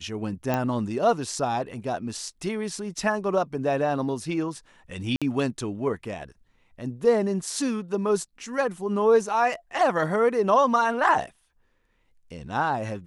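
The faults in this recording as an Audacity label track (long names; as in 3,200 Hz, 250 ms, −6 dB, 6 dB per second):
0.540000	0.540000	click −12 dBFS
5.160000	5.220000	drop-out 56 ms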